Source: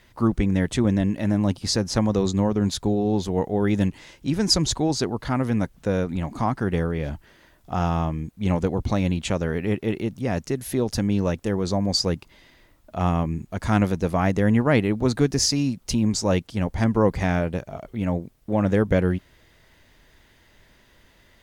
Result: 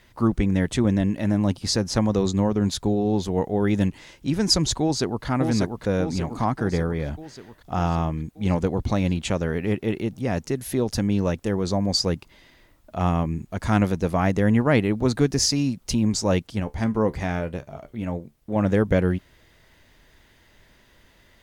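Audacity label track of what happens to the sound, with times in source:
4.810000	5.260000	echo throw 590 ms, feedback 60%, level -4.5 dB
6.630000	7.070000	band-stop 2.8 kHz, Q 5.5
16.600000	18.560000	feedback comb 73 Hz, decay 0.16 s

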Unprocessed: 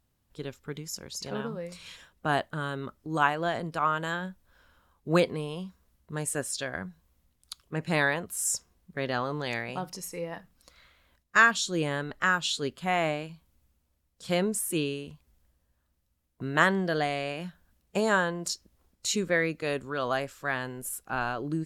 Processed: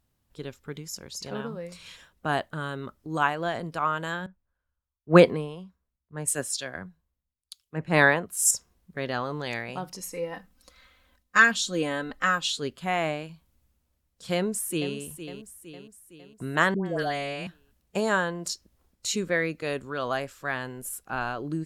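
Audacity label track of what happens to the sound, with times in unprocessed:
4.260000	8.510000	three bands expanded up and down depth 100%
10.000000	12.510000	comb 3.9 ms
14.350000	14.950000	echo throw 460 ms, feedback 55%, level -11 dB
16.740000	17.470000	phase dispersion highs, late by 116 ms, half as late at 870 Hz

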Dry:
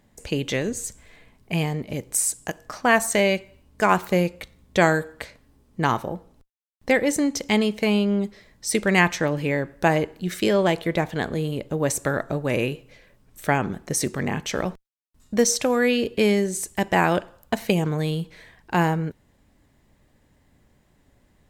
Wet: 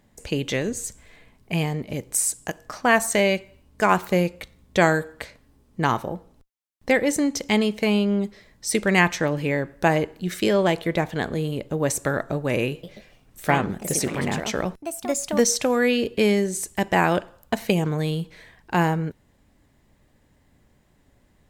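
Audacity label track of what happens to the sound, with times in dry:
12.700000	15.750000	ever faster or slower copies 133 ms, each echo +3 st, echoes 2, each echo -6 dB

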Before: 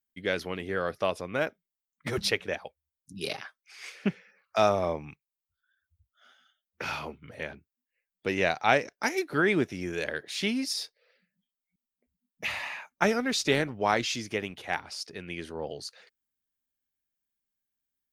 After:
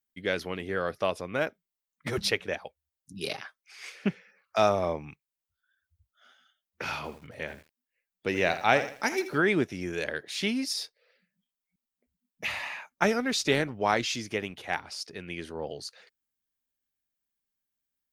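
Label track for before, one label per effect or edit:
6.960000	9.380000	bit-crushed delay 81 ms, feedback 35%, word length 8-bit, level -12 dB

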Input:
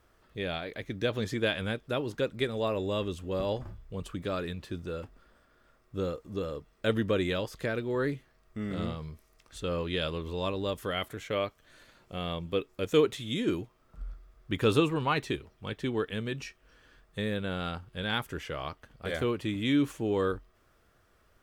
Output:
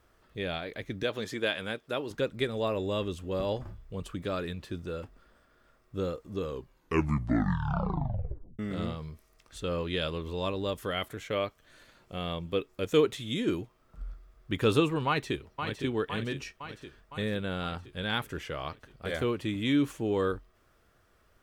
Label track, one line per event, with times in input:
1.030000	2.110000	high-pass 320 Hz 6 dB/octave
6.350000	6.350000	tape stop 2.24 s
15.070000	15.820000	echo throw 510 ms, feedback 65%, level -7 dB

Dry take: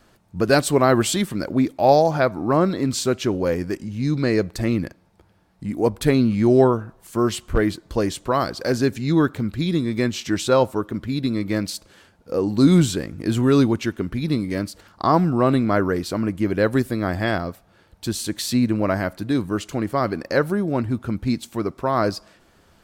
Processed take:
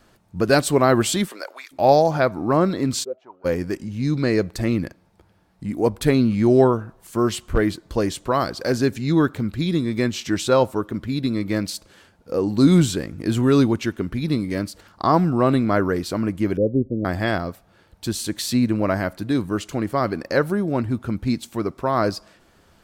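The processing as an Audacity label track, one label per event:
1.270000	1.710000	high-pass 330 Hz -> 1.3 kHz 24 dB/octave
3.030000	3.440000	band-pass filter 390 Hz -> 1.5 kHz, Q 11
16.570000	17.050000	elliptic low-pass 540 Hz, stop band 80 dB

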